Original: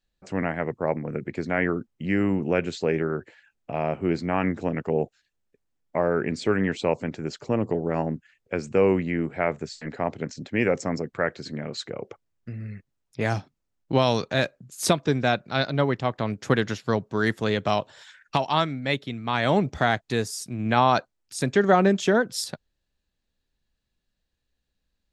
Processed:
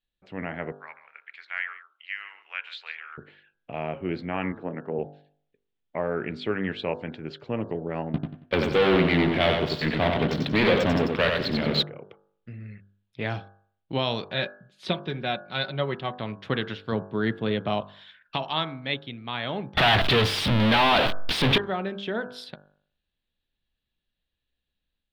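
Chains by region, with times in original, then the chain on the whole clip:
0:00.72–0:03.18: high-pass filter 1,200 Hz 24 dB per octave + single-tap delay 141 ms −15.5 dB
0:04.52–0:04.99: high-pass filter 150 Hz + flat-topped bell 4,900 Hz −14 dB 2.5 octaves
0:08.14–0:11.83: leveller curve on the samples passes 5 + repeating echo 92 ms, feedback 31%, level −4 dB
0:14.27–0:16.19: low-pass filter 6,700 Hz + comb filter 5.4 ms, depth 49%
0:16.92–0:17.81: high-pass filter 130 Hz + spectral tilt −2.5 dB per octave + notch filter 5,300 Hz, Q 15
0:19.77–0:21.58: converter with a step at zero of −23 dBFS + high-shelf EQ 9,400 Hz −7.5 dB + leveller curve on the samples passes 5
whole clip: high shelf with overshoot 4,900 Hz −13 dB, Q 3; hum removal 49.75 Hz, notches 34; automatic gain control gain up to 4 dB; level −8.5 dB

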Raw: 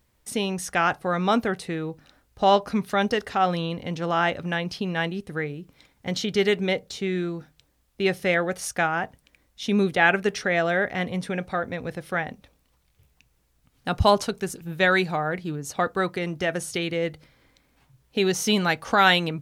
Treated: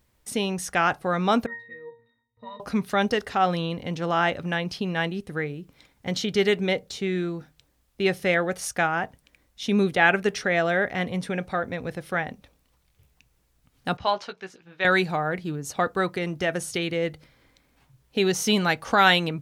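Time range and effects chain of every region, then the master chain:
0:01.46–0:02.60: parametric band 1,800 Hz +14.5 dB 1.6 octaves + resonances in every octave A#, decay 0.4 s
0:13.97–0:14.85: high-pass filter 1,300 Hz 6 dB per octave + high-frequency loss of the air 210 metres + double-tracking delay 16 ms −7 dB
whole clip: no processing

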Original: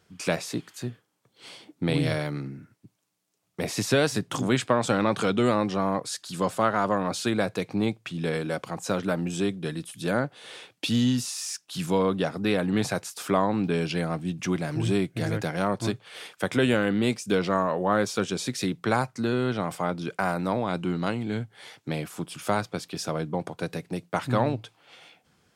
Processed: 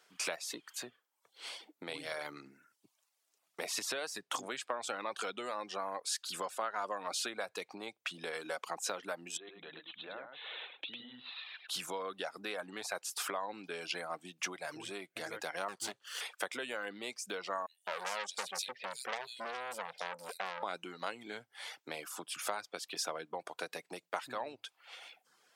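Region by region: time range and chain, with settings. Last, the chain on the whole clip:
0:09.37–0:11.69: Chebyshev low-pass filter 4,000 Hz, order 8 + downward compressor 4 to 1, threshold −41 dBFS + single-tap delay 103 ms −3.5 dB
0:15.68–0:16.21: lower of the sound and its delayed copy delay 0.66 ms + parametric band 7,900 Hz +5 dB 1.5 octaves
0:17.66–0:20.63: phaser with its sweep stopped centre 310 Hz, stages 6 + multiband delay without the direct sound highs, lows 210 ms, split 2,800 Hz + saturating transformer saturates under 2,500 Hz
whole clip: reverb reduction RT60 0.57 s; downward compressor 6 to 1, threshold −32 dBFS; high-pass filter 620 Hz 12 dB per octave; level +1 dB

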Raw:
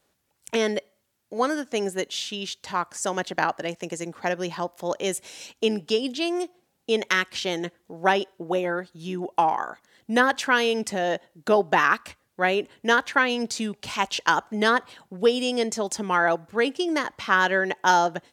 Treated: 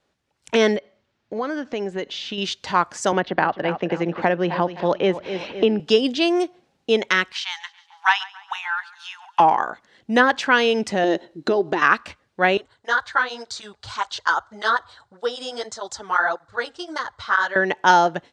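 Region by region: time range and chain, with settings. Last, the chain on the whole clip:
0:00.76–0:02.38: downward compressor 3 to 1, threshold −32 dBFS + high-frequency loss of the air 110 metres
0:03.12–0:05.80: high-frequency loss of the air 290 metres + repeating echo 258 ms, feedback 35%, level −13.5 dB + multiband upward and downward compressor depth 70%
0:07.32–0:09.40: Butterworth high-pass 830 Hz 96 dB per octave + repeating echo 140 ms, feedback 51%, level −21 dB + highs frequency-modulated by the lows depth 0.23 ms
0:11.04–0:11.82: dynamic equaliser 5,900 Hz, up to +6 dB, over −44 dBFS, Q 0.97 + downward compressor 3 to 1, threshold −29 dBFS + hollow resonant body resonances 340/4,000 Hz, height 13 dB, ringing for 30 ms
0:12.57–0:17.56: drawn EQ curve 100 Hz 0 dB, 180 Hz −22 dB, 1,400 Hz 0 dB, 2,600 Hz −16 dB, 3,900 Hz 0 dB, 5,600 Hz −5 dB, 8,400 Hz 0 dB, 13,000 Hz −19 dB + through-zero flanger with one copy inverted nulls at 1.7 Hz, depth 7.8 ms
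whole clip: low-pass filter 5,100 Hz 12 dB per octave; automatic gain control gain up to 8 dB

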